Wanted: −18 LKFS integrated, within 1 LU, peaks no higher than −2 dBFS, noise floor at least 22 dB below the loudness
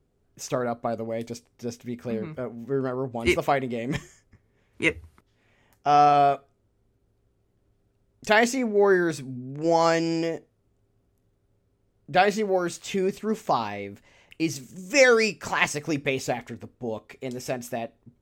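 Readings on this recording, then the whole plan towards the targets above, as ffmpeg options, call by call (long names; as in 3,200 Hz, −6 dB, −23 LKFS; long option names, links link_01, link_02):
integrated loudness −25.0 LKFS; sample peak −4.5 dBFS; target loudness −18.0 LKFS
→ -af "volume=7dB,alimiter=limit=-2dB:level=0:latency=1"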